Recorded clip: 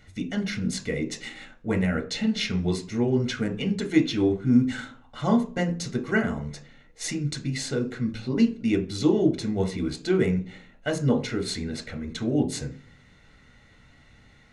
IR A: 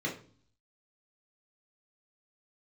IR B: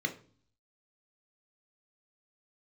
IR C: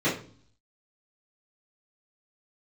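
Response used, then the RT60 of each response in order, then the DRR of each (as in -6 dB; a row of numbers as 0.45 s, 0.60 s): B; 0.45 s, 0.45 s, 0.45 s; -3.0 dB, 5.0 dB, -13.0 dB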